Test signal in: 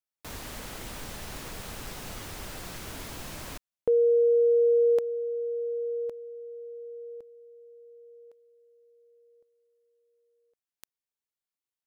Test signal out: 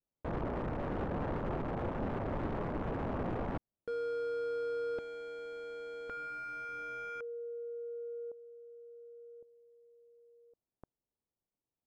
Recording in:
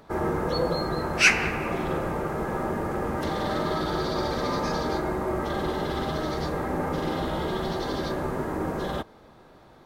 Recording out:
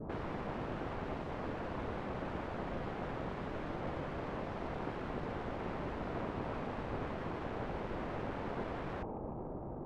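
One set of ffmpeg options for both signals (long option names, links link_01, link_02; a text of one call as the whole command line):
ffmpeg -i in.wav -af "lowpass=frequency=1300:width=0.5412,lowpass=frequency=1300:width=1.3066,adynamicequalizer=threshold=0.00562:dfrequency=860:dqfactor=2.3:tfrequency=860:tqfactor=2.3:attack=5:release=100:ratio=0.45:range=3:mode=boostabove:tftype=bell,areverse,acompressor=threshold=-31dB:ratio=8:attack=0.49:release=35:knee=1:detection=peak,areverse,aeval=exprs='(mod(84.1*val(0)+1,2)-1)/84.1':channel_layout=same,adynamicsmooth=sensitivity=1.5:basefreq=660,volume=12dB" out.wav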